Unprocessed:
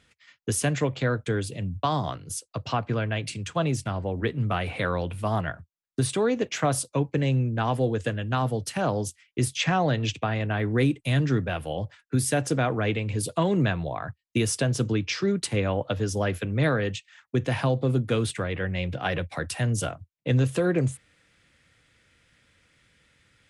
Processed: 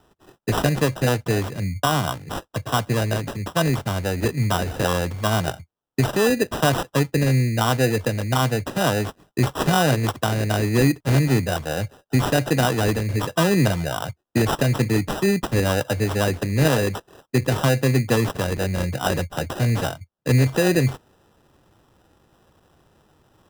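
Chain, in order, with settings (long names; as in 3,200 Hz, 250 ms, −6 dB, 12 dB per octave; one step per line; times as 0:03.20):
decimation without filtering 20×
level +5 dB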